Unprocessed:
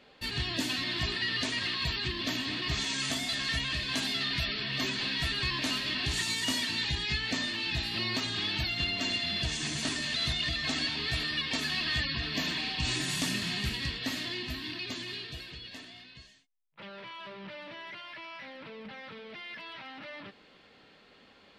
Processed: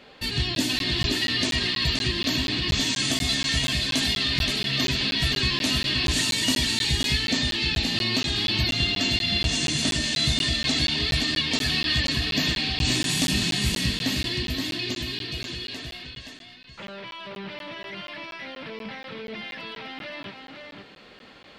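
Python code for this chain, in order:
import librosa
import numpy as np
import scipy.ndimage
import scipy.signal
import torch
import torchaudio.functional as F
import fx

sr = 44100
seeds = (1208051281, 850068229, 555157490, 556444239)

y = fx.dynamic_eq(x, sr, hz=1300.0, q=0.72, threshold_db=-49.0, ratio=4.0, max_db=-7)
y = y + 10.0 ** (-5.0 / 20.0) * np.pad(y, (int(523 * sr / 1000.0), 0))[:len(y)]
y = fx.buffer_crackle(y, sr, first_s=0.55, period_s=0.24, block=512, kind='zero')
y = F.gain(torch.from_numpy(y), 8.5).numpy()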